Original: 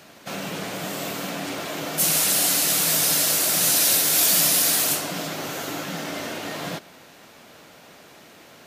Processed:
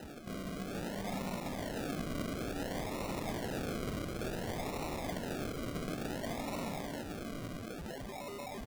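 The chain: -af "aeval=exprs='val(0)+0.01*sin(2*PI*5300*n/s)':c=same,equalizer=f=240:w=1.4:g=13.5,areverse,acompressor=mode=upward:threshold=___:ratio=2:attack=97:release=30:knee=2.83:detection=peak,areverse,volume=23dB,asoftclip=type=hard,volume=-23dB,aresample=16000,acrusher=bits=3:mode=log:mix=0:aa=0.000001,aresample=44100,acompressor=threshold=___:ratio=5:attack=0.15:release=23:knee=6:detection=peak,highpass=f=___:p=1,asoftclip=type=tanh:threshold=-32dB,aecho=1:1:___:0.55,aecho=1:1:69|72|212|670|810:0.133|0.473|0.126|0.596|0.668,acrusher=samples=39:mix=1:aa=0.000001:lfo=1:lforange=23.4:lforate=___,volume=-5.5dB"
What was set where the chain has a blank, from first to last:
-45dB, -27dB, 170, 1.4, 0.57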